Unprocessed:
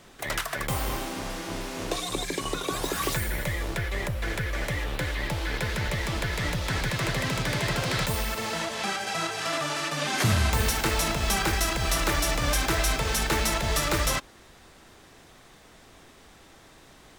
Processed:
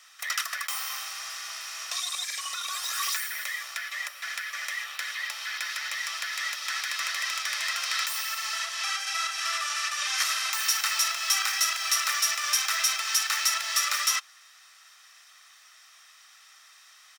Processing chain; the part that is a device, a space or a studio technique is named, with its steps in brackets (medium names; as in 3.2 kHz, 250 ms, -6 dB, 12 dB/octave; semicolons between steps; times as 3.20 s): headphones lying on a table (high-pass 1.2 kHz 24 dB/octave; peaking EQ 5.5 kHz +9.5 dB 0.24 oct); comb 1.6 ms, depth 47%